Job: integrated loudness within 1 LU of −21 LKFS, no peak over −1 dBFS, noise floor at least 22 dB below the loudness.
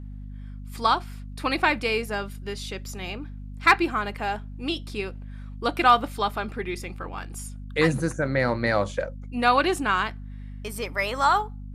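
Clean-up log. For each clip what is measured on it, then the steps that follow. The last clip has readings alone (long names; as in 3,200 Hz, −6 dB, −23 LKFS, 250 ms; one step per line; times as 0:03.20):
mains hum 50 Hz; hum harmonics up to 250 Hz; level of the hum −35 dBFS; integrated loudness −25.0 LKFS; sample peak −5.5 dBFS; target loudness −21.0 LKFS
→ hum removal 50 Hz, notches 5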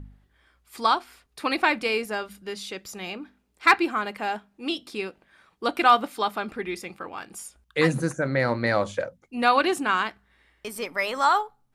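mains hum none found; integrated loudness −25.0 LKFS; sample peak −6.0 dBFS; target loudness −21.0 LKFS
→ level +4 dB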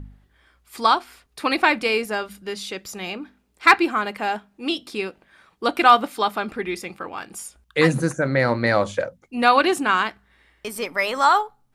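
integrated loudness −21.0 LKFS; sample peak −2.0 dBFS; background noise floor −64 dBFS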